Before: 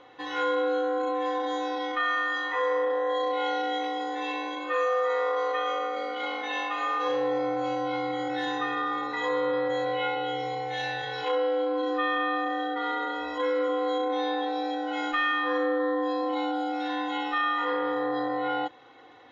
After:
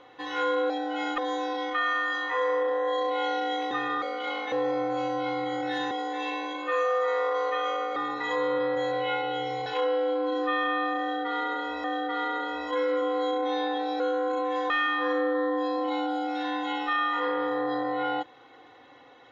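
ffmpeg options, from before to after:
-filter_complex "[0:a]asplit=12[a][b][c][d][e][f][g][h][i][j][k][l];[a]atrim=end=0.702[m];[b]atrim=start=14.668:end=15.152[n];[c]atrim=start=1.398:end=3.932[o];[d]atrim=start=8.578:end=8.892[p];[e]atrim=start=5.978:end=6.482[q];[f]atrim=start=7.188:end=8.582[r];[g]atrim=start=3.928:end=5.982[s];[h]atrim=start=8.888:end=10.592[t];[i]atrim=start=11.168:end=13.352[u];[j]atrim=start=12.508:end=14.672[v];[k]atrim=start=0.698:end=1.402[w];[l]atrim=start=15.148[x];[m][n]acrossfade=d=0.004:c1=hsin:c2=hsin[y];[y][o]acrossfade=d=0.004:c1=hsin:c2=hsin[z];[z][p]acrossfade=d=0.004:c1=hsin:c2=hsin[aa];[aa][q]acrossfade=d=0.004:c1=hsin:c2=hsin[ab];[ab][r]acrossfade=d=0.004:c1=hsin:c2=hsin[ac];[ac][s]acrossfade=d=0.004:c1=hsin:c2=hsin[ad];[ad][t]acrossfade=d=0.004:c1=hsin:c2=hsin[ae];[ae][u]acrossfade=d=0.004:c1=hsin:c2=hsin[af];[af][v]acrossfade=d=0.004:c1=hsin:c2=hsin[ag];[ag][w]acrossfade=d=0.004:c1=hsin:c2=hsin[ah];[ah][x]acrossfade=d=0.004:c1=hsin:c2=hsin"

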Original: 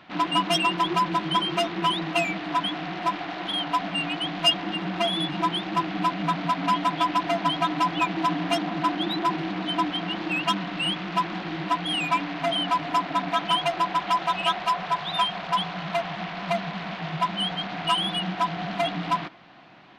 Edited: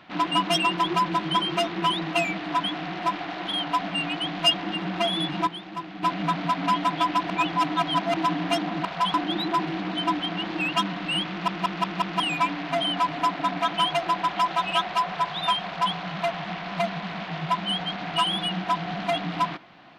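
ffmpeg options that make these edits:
-filter_complex "[0:a]asplit=12[a][b][c][d][e][f][g][h][i][j][k][l];[a]atrim=end=5.472[m];[b]atrim=start=5.468:end=6.032,asetpts=PTS-STARTPTS,volume=-9dB[n];[c]atrim=start=6.028:end=7.302[o];[d]atrim=start=7.298:end=8.142,asetpts=PTS-STARTPTS,areverse[p];[e]atrim=start=8.138:end=8.852[q];[f]atrim=start=15.368:end=15.662[r];[g]atrim=start=8.848:end=11.192[s];[h]atrim=start=11.008:end=11.192[t];[i]atrim=start=11.008:end=11.192[u];[j]atrim=start=11.008:end=11.192[v];[k]atrim=start=11.008:end=11.192[w];[l]atrim=start=11.908[x];[m][n]acrossfade=d=0.004:c1=hsin:c2=hsin[y];[y][o]acrossfade=d=0.004:c1=hsin:c2=hsin[z];[z][p]acrossfade=d=0.004:c1=hsin:c2=hsin[aa];[aa][q]acrossfade=d=0.004:c1=hsin:c2=hsin[ab];[ab][r]acrossfade=d=0.004:c1=hsin:c2=hsin[ac];[ac][s]acrossfade=d=0.004:c1=hsin:c2=hsin[ad];[ad][t]acrossfade=d=0.004:c1=hsin:c2=hsin[ae];[ae][u]acrossfade=d=0.004:c1=hsin:c2=hsin[af];[af][v]acrossfade=d=0.004:c1=hsin:c2=hsin[ag];[ag][w]acrossfade=d=0.004:c1=hsin:c2=hsin[ah];[ah][x]acrossfade=d=0.004:c1=hsin:c2=hsin"

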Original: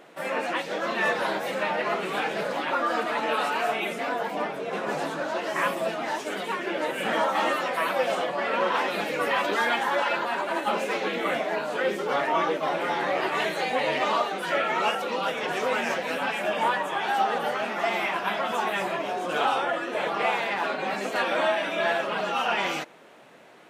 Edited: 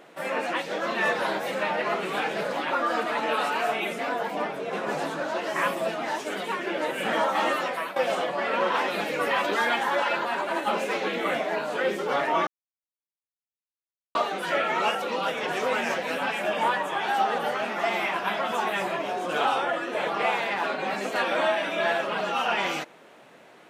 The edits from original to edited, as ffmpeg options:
-filter_complex "[0:a]asplit=4[a][b][c][d];[a]atrim=end=7.96,asetpts=PTS-STARTPTS,afade=t=out:st=7.65:d=0.31:silence=0.223872[e];[b]atrim=start=7.96:end=12.47,asetpts=PTS-STARTPTS,afade=t=in:d=0.004:c=hsin:silence=0.223872,afade=t=out:st=4.506:d=0.004:c=hsin[f];[c]atrim=start=12.47:end=14.15,asetpts=PTS-STARTPTS,volume=0[g];[d]atrim=start=14.15,asetpts=PTS-STARTPTS,afade=t=in:d=0.004:c=hsin[h];[e][f][g][h]concat=n=4:v=0:a=1"

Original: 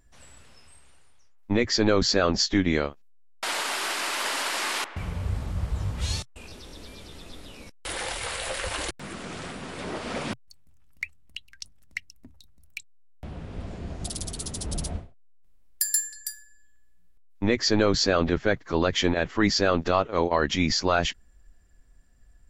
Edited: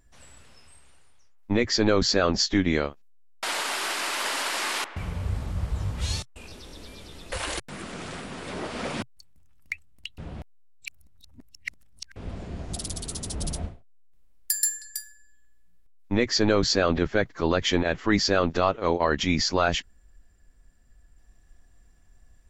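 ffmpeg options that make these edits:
-filter_complex "[0:a]asplit=4[a][b][c][d];[a]atrim=end=7.322[e];[b]atrim=start=8.628:end=11.492[f];[c]atrim=start=11.488:end=13.472,asetpts=PTS-STARTPTS,areverse[g];[d]atrim=start=13.468[h];[e][f]acrossfade=d=0.004:c1=hsin:c2=hsin[i];[i][g]acrossfade=d=0.004:c1=hsin:c2=hsin[j];[j][h]acrossfade=d=0.004:c1=hsin:c2=hsin"

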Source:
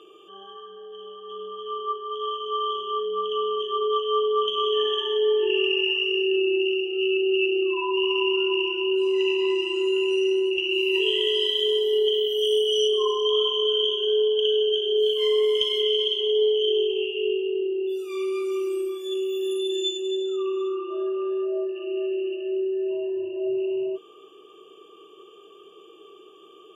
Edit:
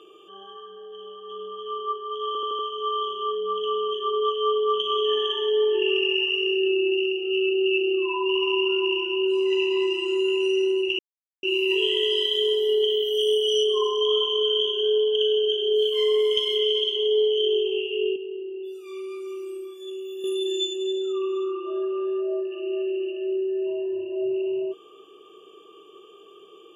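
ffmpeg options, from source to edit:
-filter_complex "[0:a]asplit=8[a][b][c][d][e][f][g][h];[a]atrim=end=2.352[i];[b]atrim=start=2.268:end=2.352[j];[c]atrim=start=2.268:end=2.352[k];[d]atrim=start=2.268:end=2.352[l];[e]atrim=start=2.268:end=10.67,asetpts=PTS-STARTPTS,afade=t=out:st=8.398:d=0.004:c=hsin,apad=pad_dur=0.44[m];[f]atrim=start=10.67:end=17.402,asetpts=PTS-STARTPTS,afade=t=in:d=0.004:c=hsin[n];[g]atrim=start=17.398:end=19.482,asetpts=PTS-STARTPTS,volume=-7.5dB[o];[h]atrim=start=19.478[p];[i][j]acrossfade=d=0.004:c1=hsin:c2=hsin[q];[q][k]acrossfade=d=0.004:c1=hsin:c2=hsin[r];[r][l]acrossfade=d=0.004:c1=hsin:c2=hsin[s];[m][n]concat=n=2:v=0:a=1[t];[s][t]acrossfade=d=0.004:c1=hsin:c2=hsin[u];[u][o]acrossfade=d=0.004:c1=hsin:c2=hsin[v];[v][p]acrossfade=d=0.004:c1=hsin:c2=hsin"

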